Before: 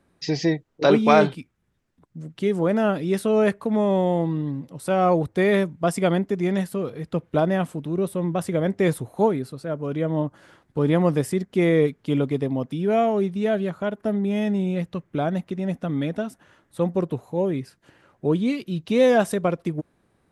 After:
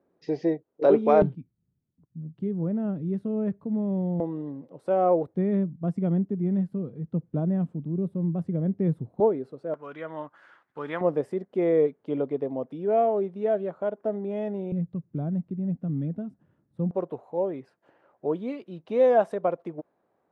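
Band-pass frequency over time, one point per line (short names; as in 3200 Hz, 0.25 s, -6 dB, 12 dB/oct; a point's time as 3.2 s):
band-pass, Q 1.4
470 Hz
from 1.22 s 140 Hz
from 4.2 s 510 Hz
from 5.34 s 170 Hz
from 9.2 s 480 Hz
from 9.74 s 1400 Hz
from 11.01 s 560 Hz
from 14.72 s 150 Hz
from 16.91 s 670 Hz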